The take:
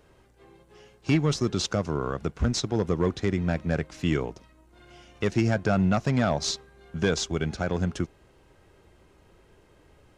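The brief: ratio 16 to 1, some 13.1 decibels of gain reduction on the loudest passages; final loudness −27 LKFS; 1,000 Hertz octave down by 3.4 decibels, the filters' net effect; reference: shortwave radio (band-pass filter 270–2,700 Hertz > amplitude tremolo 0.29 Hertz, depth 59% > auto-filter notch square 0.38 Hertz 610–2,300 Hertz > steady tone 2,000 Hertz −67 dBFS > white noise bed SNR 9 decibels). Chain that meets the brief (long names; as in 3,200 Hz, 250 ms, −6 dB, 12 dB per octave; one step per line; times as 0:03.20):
parametric band 1,000 Hz −5 dB
downward compressor 16 to 1, threshold −32 dBFS
band-pass filter 270–2,700 Hz
amplitude tremolo 0.29 Hz, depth 59%
auto-filter notch square 0.38 Hz 610–2,300 Hz
steady tone 2,000 Hz −67 dBFS
white noise bed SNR 9 dB
level +20.5 dB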